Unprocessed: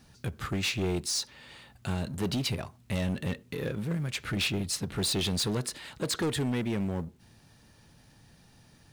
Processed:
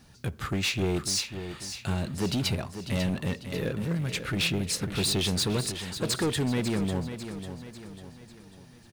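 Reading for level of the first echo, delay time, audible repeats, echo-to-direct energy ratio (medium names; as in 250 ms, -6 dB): -10.0 dB, 546 ms, 4, -9.0 dB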